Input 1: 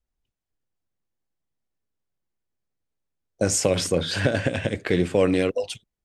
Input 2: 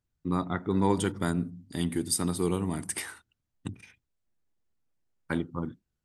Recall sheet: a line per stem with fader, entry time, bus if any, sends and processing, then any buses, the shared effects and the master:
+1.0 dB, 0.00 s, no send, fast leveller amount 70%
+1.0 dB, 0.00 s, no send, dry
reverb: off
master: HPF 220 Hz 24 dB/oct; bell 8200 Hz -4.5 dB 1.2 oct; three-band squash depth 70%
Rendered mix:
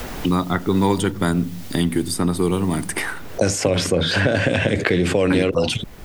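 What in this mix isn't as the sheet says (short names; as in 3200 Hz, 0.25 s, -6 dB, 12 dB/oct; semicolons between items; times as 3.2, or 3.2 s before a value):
stem 2 +1.0 dB -> +7.5 dB; master: missing HPF 220 Hz 24 dB/oct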